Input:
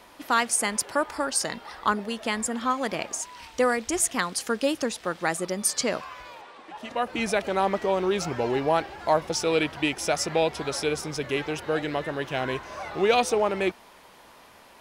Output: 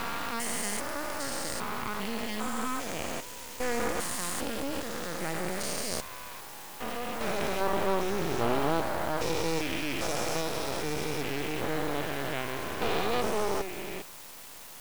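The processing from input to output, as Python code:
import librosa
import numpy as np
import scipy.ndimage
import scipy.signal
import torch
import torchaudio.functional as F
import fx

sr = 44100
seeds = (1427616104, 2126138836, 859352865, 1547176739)

y = fx.spec_steps(x, sr, hold_ms=400)
y = fx.quant_dither(y, sr, seeds[0], bits=8, dither='triangular')
y = np.maximum(y, 0.0)
y = F.gain(torch.from_numpy(y), 4.0).numpy()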